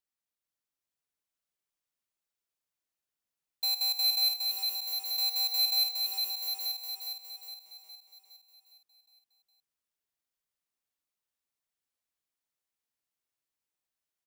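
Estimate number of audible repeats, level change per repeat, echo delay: 14, no steady repeat, 79 ms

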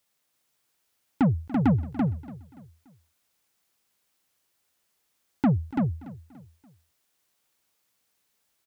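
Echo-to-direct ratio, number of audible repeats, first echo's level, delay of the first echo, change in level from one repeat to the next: -3.0 dB, 6, -17.5 dB, 0.288 s, no steady repeat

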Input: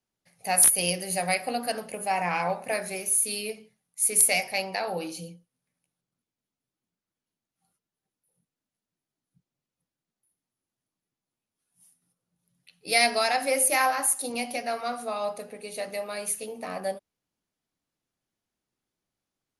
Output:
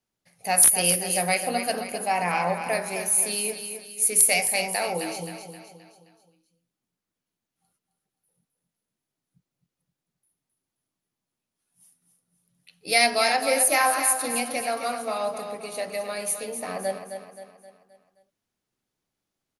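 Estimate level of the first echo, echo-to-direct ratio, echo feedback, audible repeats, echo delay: -8.5 dB, -7.5 dB, 46%, 4, 0.263 s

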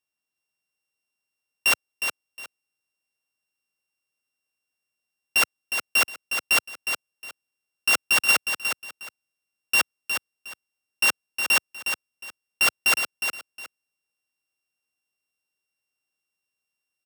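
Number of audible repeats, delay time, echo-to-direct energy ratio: 2, 0.361 s, -7.0 dB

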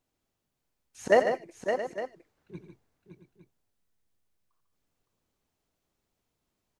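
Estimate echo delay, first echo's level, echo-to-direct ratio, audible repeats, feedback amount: 88 ms, -12.0 dB, -3.5 dB, 5, no steady repeat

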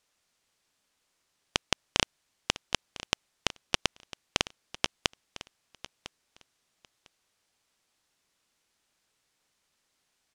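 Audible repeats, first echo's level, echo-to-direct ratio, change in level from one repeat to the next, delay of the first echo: 2, -16.5 dB, -16.5 dB, -15.5 dB, 1.002 s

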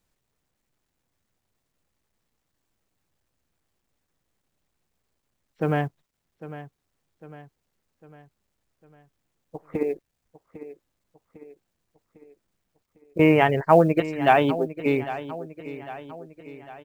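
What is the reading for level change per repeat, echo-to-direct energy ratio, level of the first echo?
-6.0 dB, -13.0 dB, -14.5 dB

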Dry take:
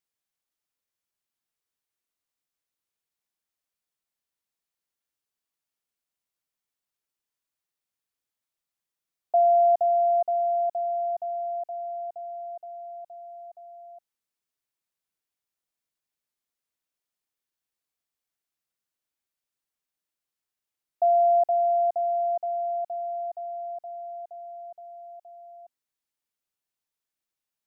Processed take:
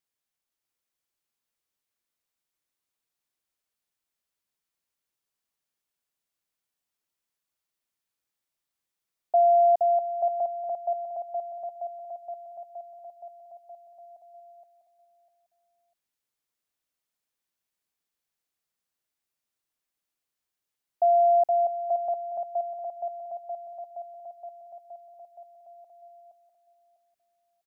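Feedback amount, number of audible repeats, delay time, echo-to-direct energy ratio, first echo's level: 24%, 3, 0.649 s, -3.0 dB, -3.5 dB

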